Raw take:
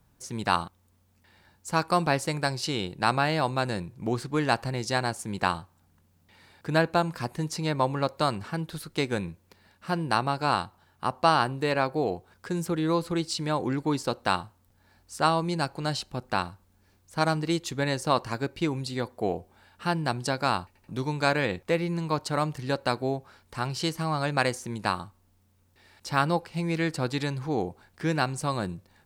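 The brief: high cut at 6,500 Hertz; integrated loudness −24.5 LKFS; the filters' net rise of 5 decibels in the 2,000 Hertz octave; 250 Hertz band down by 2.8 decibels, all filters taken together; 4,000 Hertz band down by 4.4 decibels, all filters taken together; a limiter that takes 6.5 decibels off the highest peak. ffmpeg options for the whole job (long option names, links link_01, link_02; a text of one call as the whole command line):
ffmpeg -i in.wav -af "lowpass=6500,equalizer=frequency=250:width_type=o:gain=-4.5,equalizer=frequency=2000:width_type=o:gain=8.5,equalizer=frequency=4000:width_type=o:gain=-7.5,volume=4.5dB,alimiter=limit=-7.5dB:level=0:latency=1" out.wav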